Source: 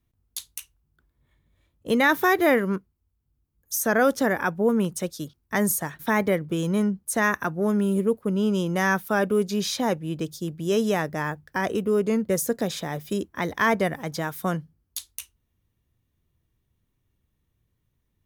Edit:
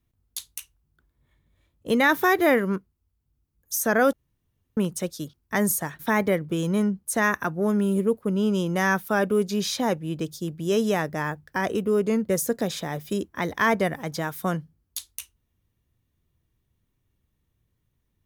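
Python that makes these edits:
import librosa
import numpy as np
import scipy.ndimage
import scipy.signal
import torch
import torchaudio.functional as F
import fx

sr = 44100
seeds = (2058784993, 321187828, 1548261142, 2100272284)

y = fx.edit(x, sr, fx.room_tone_fill(start_s=4.13, length_s=0.64), tone=tone)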